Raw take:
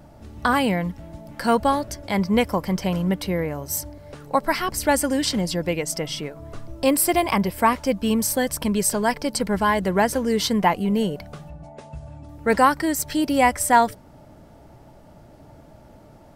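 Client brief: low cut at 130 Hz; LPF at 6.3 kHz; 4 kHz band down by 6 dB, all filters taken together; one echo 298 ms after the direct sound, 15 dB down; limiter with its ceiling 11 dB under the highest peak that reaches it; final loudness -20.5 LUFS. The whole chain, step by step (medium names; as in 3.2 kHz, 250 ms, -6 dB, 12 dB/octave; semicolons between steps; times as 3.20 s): high-pass 130 Hz; low-pass 6.3 kHz; peaking EQ 4 kHz -7.5 dB; peak limiter -15 dBFS; delay 298 ms -15 dB; trim +5 dB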